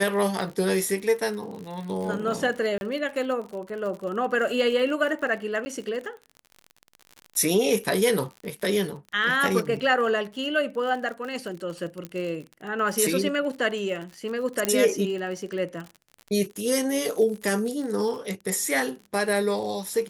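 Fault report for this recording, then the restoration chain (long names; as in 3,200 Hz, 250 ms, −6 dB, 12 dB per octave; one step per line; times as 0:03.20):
surface crackle 48 per second −33 dBFS
0:02.78–0:02.81: drop-out 31 ms
0:05.65–0:05.66: drop-out 10 ms
0:12.05: click −19 dBFS
0:14.65: click −7 dBFS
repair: click removal
repair the gap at 0:02.78, 31 ms
repair the gap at 0:05.65, 10 ms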